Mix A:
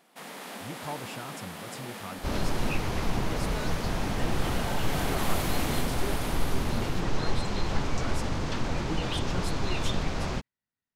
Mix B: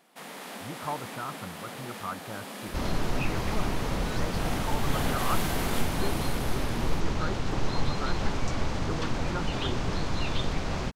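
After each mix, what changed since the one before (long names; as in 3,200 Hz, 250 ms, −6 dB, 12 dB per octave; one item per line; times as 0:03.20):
speech: add low-pass with resonance 1,300 Hz, resonance Q 3.2
second sound: entry +0.50 s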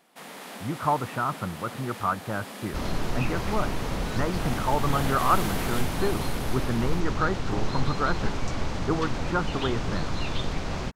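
speech +9.5 dB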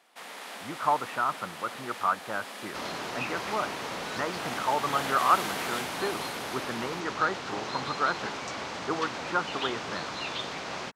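master: add meter weighting curve A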